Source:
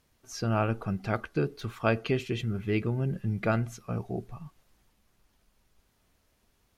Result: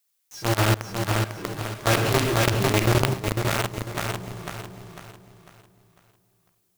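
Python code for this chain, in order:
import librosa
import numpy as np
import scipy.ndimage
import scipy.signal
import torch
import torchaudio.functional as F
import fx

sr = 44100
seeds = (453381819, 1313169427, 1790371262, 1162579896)

p1 = fx.cvsd(x, sr, bps=64000)
p2 = fx.noise_reduce_blind(p1, sr, reduce_db=9)
p3 = fx.rev_fdn(p2, sr, rt60_s=1.2, lf_ratio=0.85, hf_ratio=0.65, size_ms=51.0, drr_db=-7.0)
p4 = fx.quant_companded(p3, sr, bits=2)
p5 = fx.dmg_noise_colour(p4, sr, seeds[0], colour='blue', level_db=-60.0)
p6 = p5 + fx.echo_feedback(p5, sr, ms=499, feedback_pct=37, wet_db=-4.5, dry=0)
p7 = fx.env_flatten(p6, sr, amount_pct=70, at=(1.86, 3.14))
y = p7 * librosa.db_to_amplitude(-12.5)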